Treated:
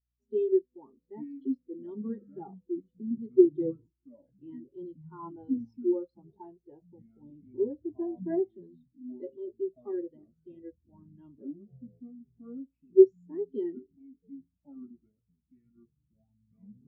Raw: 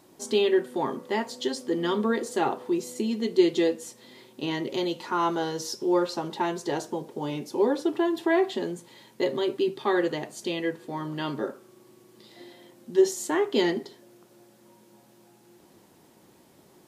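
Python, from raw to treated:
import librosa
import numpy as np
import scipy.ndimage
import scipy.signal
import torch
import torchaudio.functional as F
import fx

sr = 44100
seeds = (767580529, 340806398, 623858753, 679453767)

y = scipy.signal.sosfilt(scipy.signal.butter(2, 7200.0, 'lowpass', fs=sr, output='sos'), x)
y = fx.low_shelf(y, sr, hz=190.0, db=7.5)
y = fx.echo_pitch(y, sr, ms=714, semitones=-6, count=3, db_per_echo=-6.0)
y = fx.add_hum(y, sr, base_hz=60, snr_db=18)
y = fx.spectral_expand(y, sr, expansion=2.5)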